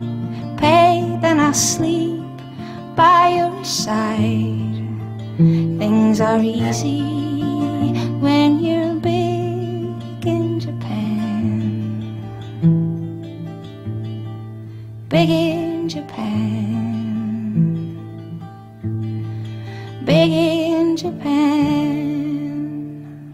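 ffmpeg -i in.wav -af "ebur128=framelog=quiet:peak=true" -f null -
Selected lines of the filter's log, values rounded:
Integrated loudness:
  I:         -18.5 LUFS
  Threshold: -29.1 LUFS
Loudness range:
  LRA:         6.3 LU
  Threshold: -39.3 LUFS
  LRA low:   -23.0 LUFS
  LRA high:  -16.7 LUFS
True peak:
  Peak:       -2.6 dBFS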